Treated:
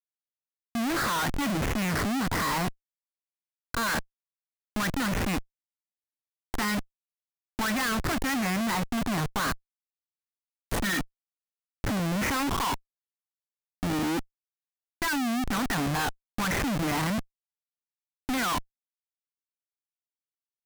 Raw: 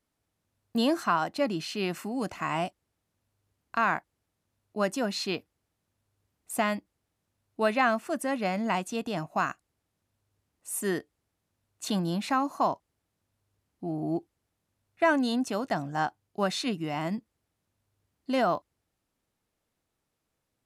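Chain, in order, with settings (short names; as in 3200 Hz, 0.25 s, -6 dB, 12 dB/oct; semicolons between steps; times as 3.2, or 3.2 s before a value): EQ curve 130 Hz 0 dB, 200 Hz +4 dB, 290 Hz +6 dB, 470 Hz -21 dB, 870 Hz +6 dB, 1900 Hz +13 dB, 4000 Hz -21 dB, 9100 Hz -10 dB; Schmitt trigger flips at -37.5 dBFS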